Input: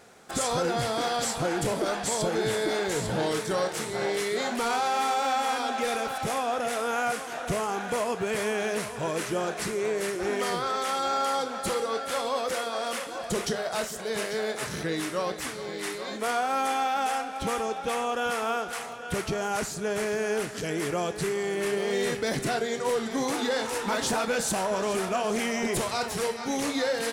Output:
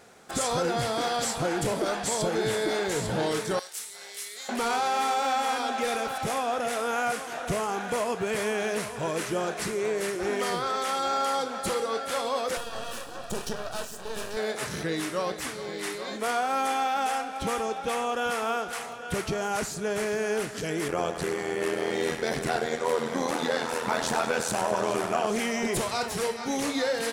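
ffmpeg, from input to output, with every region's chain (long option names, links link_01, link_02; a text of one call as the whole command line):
ffmpeg -i in.wav -filter_complex "[0:a]asettb=1/sr,asplit=3[link_01][link_02][link_03];[link_01]atrim=end=3.594[link_04];[link_02]atrim=start=3.59:end=4.49,asetpts=PTS-STARTPTS,afade=type=in:duration=0.004:curve=qsin,afade=type=out:start_time=0.896:duration=0.004:curve=qsin,highpass=41,aderivative[link_05];[link_03]atrim=start=4.486[link_06];[link_04][link_05]acrossfade=duration=0.004:curve1=hsin:curve2=qsin[link_07];[link_07][link_06]acrossfade=duration=0.004:curve1=qsin:curve2=hsin,asettb=1/sr,asplit=3[link_08][link_09][link_10];[link_08]atrim=end=12.574[link_11];[link_09]atrim=start=12.57:end=14.37,asetpts=PTS-STARTPTS,afade=type=in:duration=0.004:curve=qsin,afade=type=out:start_time=1.796:duration=0.004:curve=qsin,aeval=exprs='max(val(0),0)':channel_layout=same,asuperstop=centerf=2100:order=4:qfactor=5.4[link_12];[link_10]atrim=start=14.366[link_13];[link_11][link_12]acrossfade=duration=0.004:curve1=hsin:curve2=qsin[link_14];[link_14][link_13]acrossfade=duration=0.004:curve1=qsin:curve2=hsin,asettb=1/sr,asplit=3[link_15][link_16][link_17];[link_15]atrim=end=20.884[link_18];[link_16]atrim=start=20.88:end=25.27,asetpts=PTS-STARTPTS,afade=type=in:duration=0.004:curve=qsin,afade=type=out:start_time=4.386:duration=0.004:curve=qsin,equalizer=frequency=1000:width=0.47:gain=5,tremolo=f=83:d=0.824,aecho=1:1:98|196|294|392|490|588|686:0.316|0.183|0.106|0.0617|0.0358|0.0208|0.012,atrim=end_sample=193599[link_19];[link_17]atrim=start=25.266[link_20];[link_18][link_19]acrossfade=duration=0.004:curve1=hsin:curve2=qsin[link_21];[link_21][link_20]acrossfade=duration=0.004:curve1=qsin:curve2=hsin" out.wav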